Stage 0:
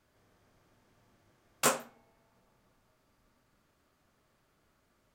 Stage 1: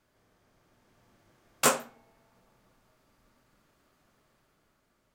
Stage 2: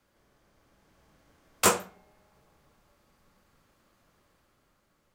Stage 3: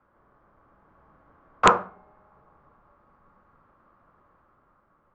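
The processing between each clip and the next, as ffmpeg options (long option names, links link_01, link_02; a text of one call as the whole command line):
ffmpeg -i in.wav -af "equalizer=frequency=82:width_type=o:width=0.39:gain=-7,dynaudnorm=framelen=200:gausssize=9:maxgain=4dB" out.wav
ffmpeg -i in.wav -af "afreqshift=-50,volume=1.5dB" out.wav
ffmpeg -i in.wav -af "lowpass=frequency=1200:width_type=q:width=2.7,aresample=16000,aeval=exprs='(mod(1.88*val(0)+1,2)-1)/1.88':channel_layout=same,aresample=44100,volume=3dB" out.wav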